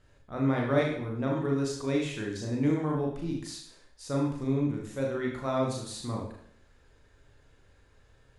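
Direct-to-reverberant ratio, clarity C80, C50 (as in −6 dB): −1.5 dB, 8.0 dB, 4.5 dB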